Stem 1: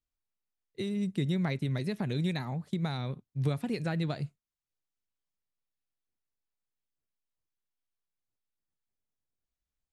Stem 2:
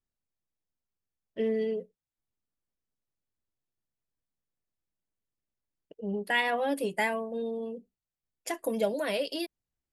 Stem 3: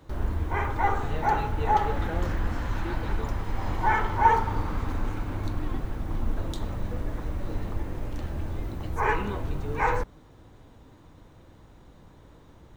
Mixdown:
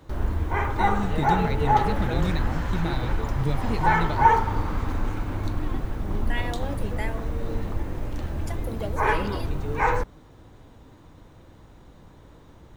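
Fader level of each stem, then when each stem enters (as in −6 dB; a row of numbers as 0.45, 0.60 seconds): +2.0, −6.0, +2.5 decibels; 0.00, 0.00, 0.00 seconds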